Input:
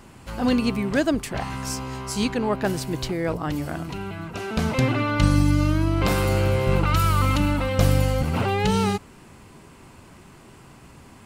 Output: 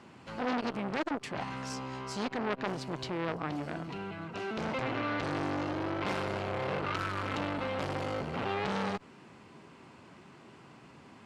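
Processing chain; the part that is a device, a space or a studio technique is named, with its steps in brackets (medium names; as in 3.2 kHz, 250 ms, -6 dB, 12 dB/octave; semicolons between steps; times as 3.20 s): valve radio (band-pass 150–4800 Hz; valve stage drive 14 dB, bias 0.45; transformer saturation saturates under 1.6 kHz); trim -3 dB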